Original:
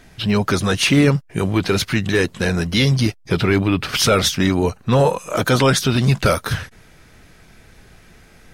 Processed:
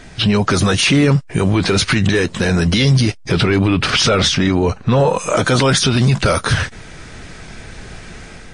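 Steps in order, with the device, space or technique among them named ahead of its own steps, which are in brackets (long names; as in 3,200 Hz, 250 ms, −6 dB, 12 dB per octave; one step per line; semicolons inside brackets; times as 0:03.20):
0:03.90–0:05.15: high-frequency loss of the air 75 metres
low-bitrate web radio (automatic gain control gain up to 4.5 dB; brickwall limiter −14.5 dBFS, peak gain reduction 11.5 dB; level +9 dB; MP3 40 kbit/s 22,050 Hz)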